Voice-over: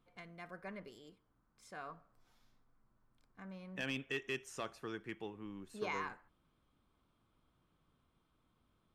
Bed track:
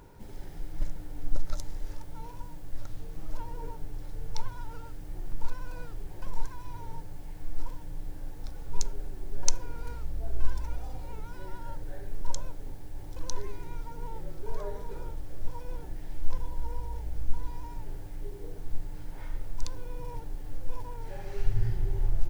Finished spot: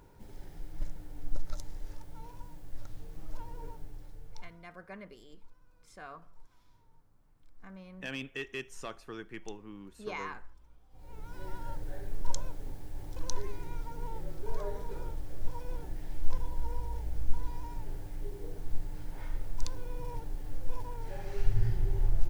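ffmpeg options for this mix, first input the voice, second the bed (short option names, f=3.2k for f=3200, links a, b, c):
-filter_complex "[0:a]adelay=4250,volume=1dB[a];[1:a]volume=20.5dB,afade=t=out:st=3.68:d=0.98:silence=0.0891251,afade=t=in:st=10.9:d=0.58:silence=0.0530884[b];[a][b]amix=inputs=2:normalize=0"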